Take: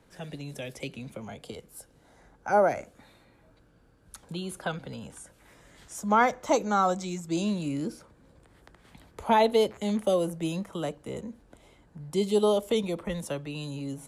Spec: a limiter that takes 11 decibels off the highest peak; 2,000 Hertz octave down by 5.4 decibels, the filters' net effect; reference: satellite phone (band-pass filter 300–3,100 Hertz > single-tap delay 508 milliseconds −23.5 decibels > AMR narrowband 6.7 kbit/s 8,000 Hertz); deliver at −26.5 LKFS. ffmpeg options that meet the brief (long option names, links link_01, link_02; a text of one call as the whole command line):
ffmpeg -i in.wav -af "equalizer=frequency=2000:width_type=o:gain=-7,alimiter=limit=-23dB:level=0:latency=1,highpass=300,lowpass=3100,aecho=1:1:508:0.0668,volume=11dB" -ar 8000 -c:a libopencore_amrnb -b:a 6700 out.amr